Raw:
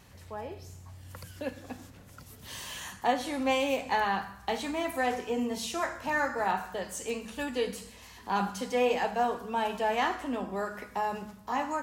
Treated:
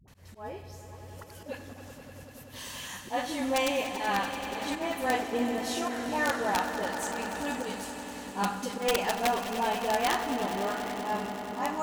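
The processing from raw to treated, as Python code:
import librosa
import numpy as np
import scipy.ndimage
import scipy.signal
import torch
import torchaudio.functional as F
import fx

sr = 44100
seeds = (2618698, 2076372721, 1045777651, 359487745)

p1 = fx.dispersion(x, sr, late='highs', ms=79.0, hz=470.0)
p2 = fx.auto_swell(p1, sr, attack_ms=117.0)
p3 = (np.mod(10.0 ** (18.5 / 20.0) * p2 + 1.0, 2.0) - 1.0) / 10.0 ** (18.5 / 20.0)
p4 = p3 + fx.echo_swell(p3, sr, ms=96, loudest=5, wet_db=-13.5, dry=0)
y = fx.band_widen(p4, sr, depth_pct=70, at=(4.75, 5.33))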